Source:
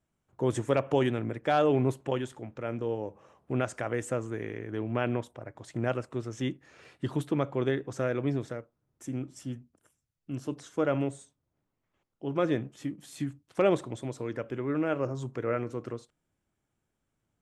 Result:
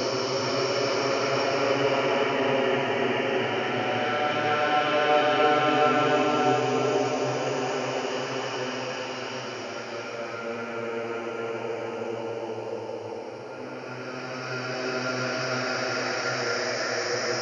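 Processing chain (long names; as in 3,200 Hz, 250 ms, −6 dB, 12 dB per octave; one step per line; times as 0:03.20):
hearing-aid frequency compression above 2,400 Hz 1.5 to 1
spectral tilt +4 dB per octave
echo through a band-pass that steps 298 ms, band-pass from 780 Hz, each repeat 1.4 octaves, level −8 dB
extreme stretch with random phases 4.9×, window 1.00 s, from 0:00.47
level +6.5 dB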